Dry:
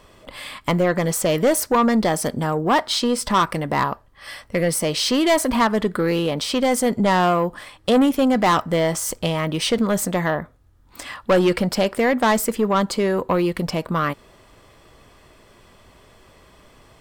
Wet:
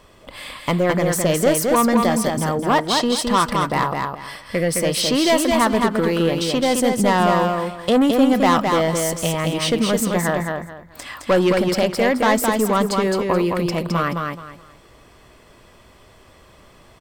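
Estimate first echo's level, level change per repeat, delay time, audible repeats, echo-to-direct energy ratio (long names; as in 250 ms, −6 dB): −4.0 dB, −12.0 dB, 214 ms, 3, −3.5 dB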